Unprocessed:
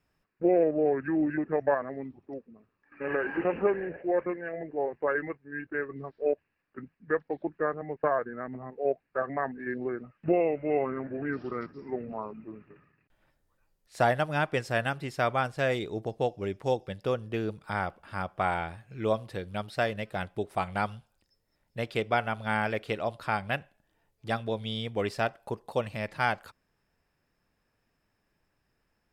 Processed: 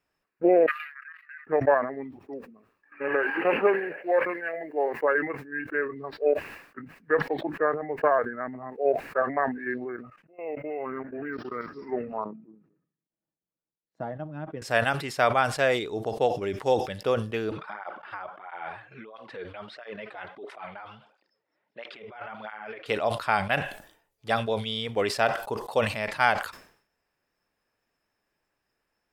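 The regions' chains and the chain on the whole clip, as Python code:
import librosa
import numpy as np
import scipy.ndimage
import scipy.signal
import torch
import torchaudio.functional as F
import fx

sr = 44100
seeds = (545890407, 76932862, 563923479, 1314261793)

y = fx.chain(x, sr, fx.steep_highpass(hz=1200.0, slope=72),
    fx.level_steps(step_db=16), at=(0.66, 1.47))
y = fx.chain(y, sr, fx.highpass(hz=150.0, slope=6),
    fx.high_shelf(hz=2700.0, db=9.0), at=(3.23, 5.02))
y = fx.chain(y, sr, fx.auto_swell(attack_ms=447.0),
    fx.level_steps(step_db=18),
    fx.resample_linear(factor=2), at=(9.84, 11.71))
y = fx.chain(y, sr, fx.law_mismatch(coded='A'),
    fx.bandpass_q(hz=200.0, q=1.7),
    fx.comb(ms=6.2, depth=0.34), at=(12.24, 14.62))
y = fx.chain(y, sr, fx.over_compress(threshold_db=-38.0, ratio=-1.0),
    fx.bandpass_edges(low_hz=240.0, high_hz=2600.0),
    fx.flanger_cancel(hz=1.5, depth_ms=5.3), at=(17.51, 22.86))
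y = fx.noise_reduce_blind(y, sr, reduce_db=6)
y = fx.bass_treble(y, sr, bass_db=-10, treble_db=-1)
y = fx.sustainer(y, sr, db_per_s=100.0)
y = y * librosa.db_to_amplitude(5.0)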